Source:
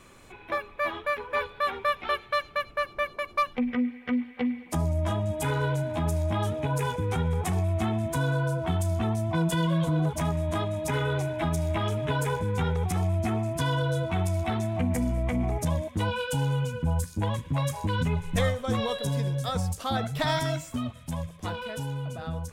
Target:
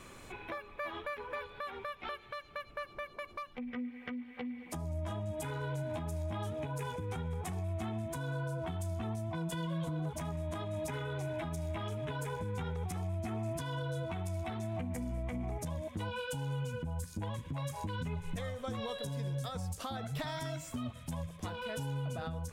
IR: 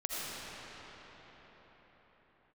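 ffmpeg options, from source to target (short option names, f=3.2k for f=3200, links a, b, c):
-af "acompressor=threshold=-31dB:ratio=6,alimiter=level_in=6.5dB:limit=-24dB:level=0:latency=1:release=457,volume=-6.5dB,volume=1dB"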